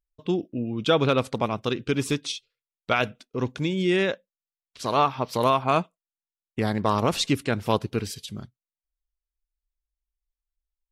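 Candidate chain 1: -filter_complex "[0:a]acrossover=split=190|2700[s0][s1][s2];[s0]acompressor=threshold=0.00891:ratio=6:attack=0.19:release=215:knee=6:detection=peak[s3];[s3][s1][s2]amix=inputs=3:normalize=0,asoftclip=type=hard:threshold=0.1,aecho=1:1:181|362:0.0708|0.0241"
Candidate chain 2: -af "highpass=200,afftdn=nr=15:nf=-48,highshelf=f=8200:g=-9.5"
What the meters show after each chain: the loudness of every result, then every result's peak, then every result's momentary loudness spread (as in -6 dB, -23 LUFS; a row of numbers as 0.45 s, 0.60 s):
-29.0 LUFS, -26.5 LUFS; -19.0 dBFS, -7.0 dBFS; 10 LU, 14 LU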